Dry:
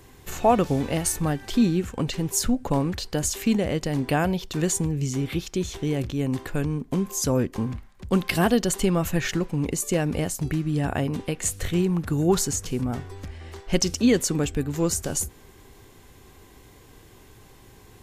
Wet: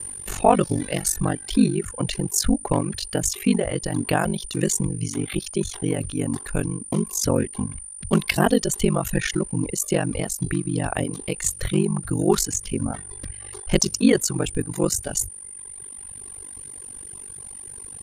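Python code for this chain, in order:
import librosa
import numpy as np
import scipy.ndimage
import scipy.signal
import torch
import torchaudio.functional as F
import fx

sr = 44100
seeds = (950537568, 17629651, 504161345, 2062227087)

y = x + 10.0 ** (-33.0 / 20.0) * np.sin(2.0 * np.pi * 9200.0 * np.arange(len(x)) / sr)
y = y * np.sin(2.0 * np.pi * 24.0 * np.arange(len(y)) / sr)
y = fx.dereverb_blind(y, sr, rt60_s=1.8)
y = y * librosa.db_to_amplitude(5.5)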